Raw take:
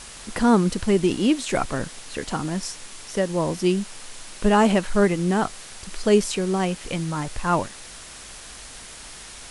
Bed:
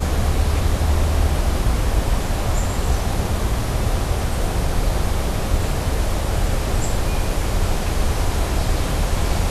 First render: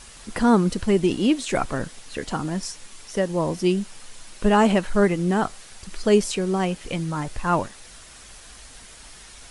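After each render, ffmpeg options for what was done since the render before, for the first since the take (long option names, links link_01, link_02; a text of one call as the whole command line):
ffmpeg -i in.wav -af "afftdn=noise_reduction=6:noise_floor=-41" out.wav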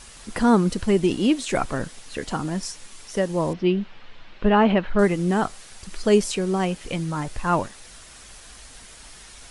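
ffmpeg -i in.wav -filter_complex "[0:a]asettb=1/sr,asplit=3[link_01][link_02][link_03];[link_01]atrim=end=3.534[link_04];[link_02]atrim=start=3.53:end=4.99,asetpts=PTS-STARTPTS,afade=type=in:duration=0.004:curve=qsin,afade=type=out:start_time=1.456:duration=0.004:curve=qsin,lowpass=frequency=3500:width=0.5412,lowpass=frequency=3500:width=1.3066[link_05];[link_03]atrim=start=4.986[link_06];[link_04][link_05]acrossfade=duration=0.004:curve1=hsin:curve2=qsin[link_07];[link_07][link_06]acrossfade=duration=0.004:curve1=qsin:curve2=hsin" out.wav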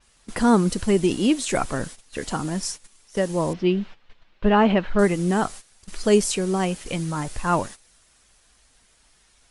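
ffmpeg -i in.wav -af "agate=range=-15dB:threshold=-36dB:ratio=16:detection=peak,adynamicequalizer=threshold=0.00562:dfrequency=5500:dqfactor=0.7:tfrequency=5500:tqfactor=0.7:attack=5:release=100:ratio=0.375:range=3:mode=boostabove:tftype=highshelf" out.wav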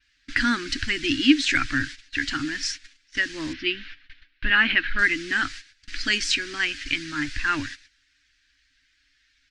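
ffmpeg -i in.wav -af "agate=range=-11dB:threshold=-50dB:ratio=16:detection=peak,firequalizer=gain_entry='entry(130,0);entry(180,-28);entry(280,8);entry(420,-25);entry(670,-22);entry(1000,-15);entry(1600,13);entry(3200,8);entry(4600,8);entry(12000,-30)':delay=0.05:min_phase=1" out.wav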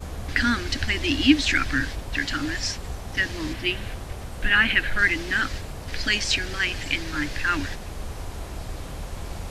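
ffmpeg -i in.wav -i bed.wav -filter_complex "[1:a]volume=-14dB[link_01];[0:a][link_01]amix=inputs=2:normalize=0" out.wav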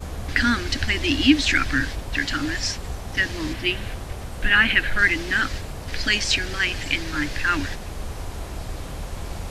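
ffmpeg -i in.wav -af "volume=2dB,alimiter=limit=-3dB:level=0:latency=1" out.wav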